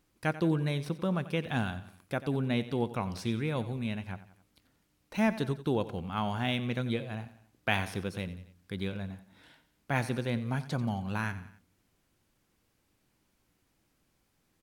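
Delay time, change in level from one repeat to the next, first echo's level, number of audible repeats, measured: 90 ms, -6.0 dB, -15.0 dB, 3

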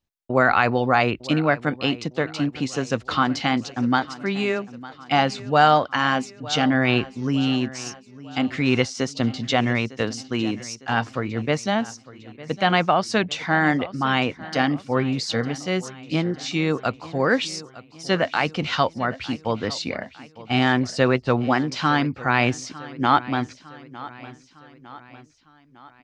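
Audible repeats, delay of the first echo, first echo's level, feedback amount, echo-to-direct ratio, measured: 3, 905 ms, -18.0 dB, 52%, -16.5 dB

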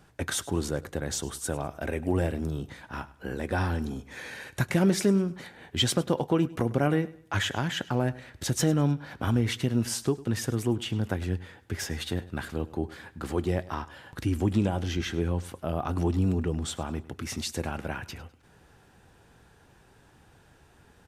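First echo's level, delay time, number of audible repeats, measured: -19.0 dB, 102 ms, 2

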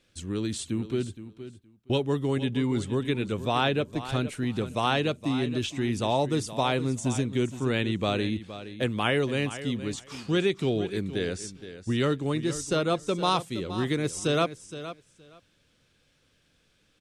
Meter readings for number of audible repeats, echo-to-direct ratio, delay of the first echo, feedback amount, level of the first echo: 2, -13.0 dB, 468 ms, 16%, -13.0 dB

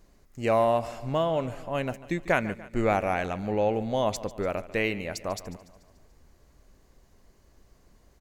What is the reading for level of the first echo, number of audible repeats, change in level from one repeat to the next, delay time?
-17.0 dB, 4, -5.5 dB, 145 ms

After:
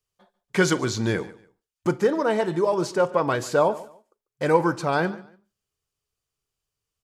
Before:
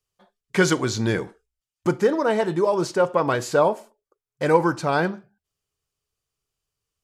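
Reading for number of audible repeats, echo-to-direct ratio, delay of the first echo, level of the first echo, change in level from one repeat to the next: 2, -19.0 dB, 144 ms, -19.5 dB, -12.0 dB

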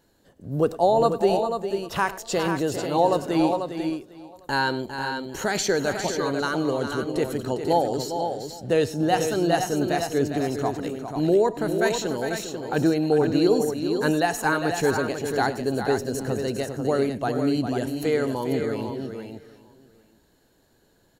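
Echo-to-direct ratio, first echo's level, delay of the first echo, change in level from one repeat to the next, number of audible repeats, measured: -4.5 dB, -18.5 dB, 102 ms, no regular repeats, 6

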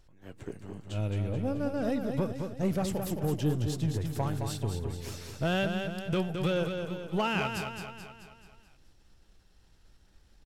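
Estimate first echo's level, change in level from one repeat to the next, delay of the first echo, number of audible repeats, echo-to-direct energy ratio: -6.0 dB, -5.5 dB, 216 ms, 6, -4.5 dB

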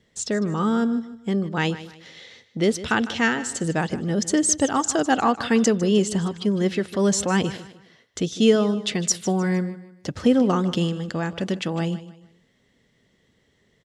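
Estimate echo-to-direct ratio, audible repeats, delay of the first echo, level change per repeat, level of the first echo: -15.0 dB, 3, 153 ms, -9.5 dB, -15.5 dB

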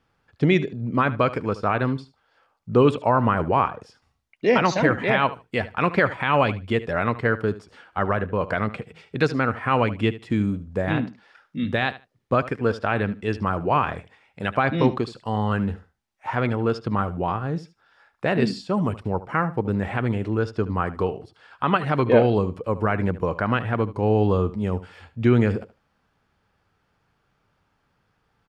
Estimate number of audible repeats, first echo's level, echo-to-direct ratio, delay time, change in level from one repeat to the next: 2, -16.0 dB, -16.0 dB, 75 ms, -16.0 dB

